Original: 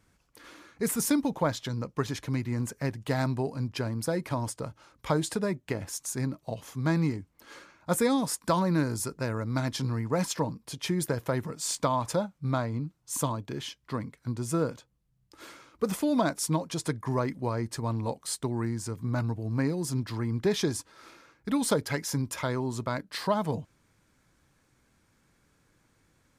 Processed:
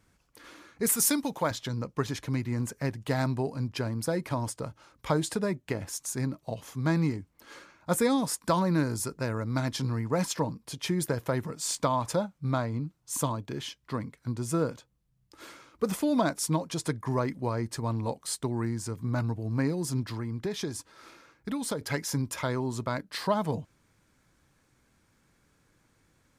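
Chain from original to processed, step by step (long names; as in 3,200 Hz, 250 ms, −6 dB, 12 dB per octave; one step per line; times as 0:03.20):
0:00.86–0:01.51: spectral tilt +2 dB per octave
0:20.07–0:21.81: downward compressor 2.5 to 1, threshold −32 dBFS, peak gain reduction 8 dB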